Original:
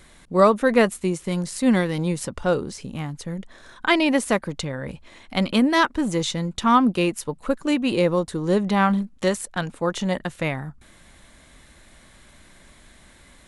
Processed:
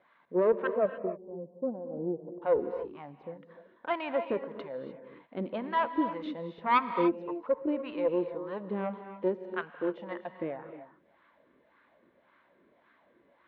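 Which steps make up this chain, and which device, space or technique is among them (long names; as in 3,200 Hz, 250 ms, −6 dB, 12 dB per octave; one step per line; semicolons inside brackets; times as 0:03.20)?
0:00.67–0:02.42: Butterworth low-pass 750 Hz 48 dB per octave
wah-wah guitar rig (LFO wah 1.8 Hz 360–1,200 Hz, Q 3.6; tube saturation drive 16 dB, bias 0.5; loudspeaker in its box 86–3,500 Hz, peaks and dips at 110 Hz −7 dB, 390 Hz −4 dB, 770 Hz −7 dB, 1,200 Hz −5 dB)
reverb whose tail is shaped and stops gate 320 ms rising, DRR 8.5 dB
level +3.5 dB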